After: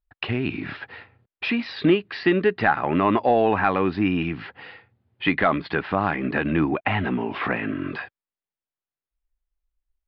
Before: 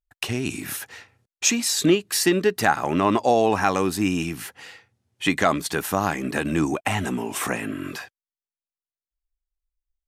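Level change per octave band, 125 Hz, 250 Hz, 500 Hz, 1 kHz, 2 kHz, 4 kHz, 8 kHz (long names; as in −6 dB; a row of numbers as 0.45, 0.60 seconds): +1.0 dB, +0.5 dB, 0.0 dB, 0.0 dB, +1.5 dB, −5.5 dB, below −40 dB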